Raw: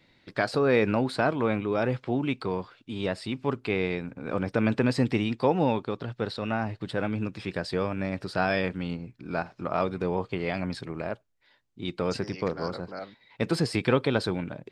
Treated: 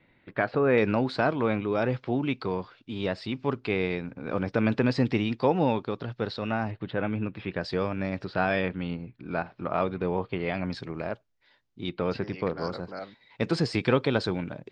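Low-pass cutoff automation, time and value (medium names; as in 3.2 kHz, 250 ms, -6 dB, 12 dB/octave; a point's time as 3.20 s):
low-pass 24 dB/octave
2.8 kHz
from 0.78 s 5.9 kHz
from 6.71 s 3.3 kHz
from 7.61 s 6 kHz
from 8.25 s 3.9 kHz
from 10.65 s 6.4 kHz
from 11.89 s 3.9 kHz
from 12.58 s 7 kHz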